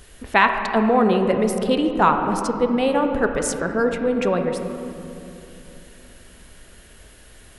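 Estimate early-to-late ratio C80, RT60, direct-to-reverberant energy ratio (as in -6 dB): 6.5 dB, 3.0 s, 5.0 dB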